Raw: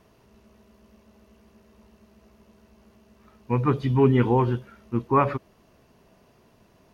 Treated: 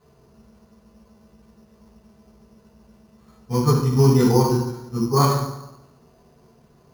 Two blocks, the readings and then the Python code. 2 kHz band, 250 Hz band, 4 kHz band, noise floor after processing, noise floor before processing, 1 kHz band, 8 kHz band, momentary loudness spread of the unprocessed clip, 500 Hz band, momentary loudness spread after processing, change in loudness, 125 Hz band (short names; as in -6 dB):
-2.0 dB, +4.0 dB, +14.0 dB, -56 dBFS, -60 dBFS, +1.5 dB, n/a, 12 LU, +3.0 dB, 12 LU, +4.0 dB, +5.5 dB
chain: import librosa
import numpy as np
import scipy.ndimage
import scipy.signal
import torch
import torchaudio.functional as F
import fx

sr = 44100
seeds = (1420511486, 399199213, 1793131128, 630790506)

y = fx.high_shelf(x, sr, hz=2600.0, db=-11.5)
y = fx.rev_fdn(y, sr, rt60_s=0.92, lf_ratio=1.0, hf_ratio=0.65, size_ms=40.0, drr_db=-10.0)
y = np.repeat(y[::8], 8)[:len(y)]
y = y * 10.0 ** (-7.0 / 20.0)